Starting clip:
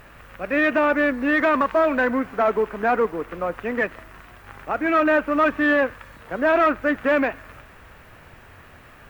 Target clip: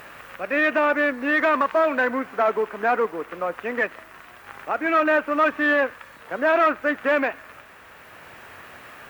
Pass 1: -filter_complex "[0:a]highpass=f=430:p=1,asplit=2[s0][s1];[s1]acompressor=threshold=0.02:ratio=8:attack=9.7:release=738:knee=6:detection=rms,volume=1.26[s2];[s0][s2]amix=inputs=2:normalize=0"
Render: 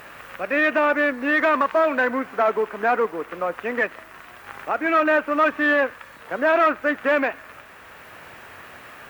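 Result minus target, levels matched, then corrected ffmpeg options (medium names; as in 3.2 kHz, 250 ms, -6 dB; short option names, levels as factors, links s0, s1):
compression: peak gain reduction -7.5 dB
-filter_complex "[0:a]highpass=f=430:p=1,asplit=2[s0][s1];[s1]acompressor=threshold=0.0075:ratio=8:attack=9.7:release=738:knee=6:detection=rms,volume=1.26[s2];[s0][s2]amix=inputs=2:normalize=0"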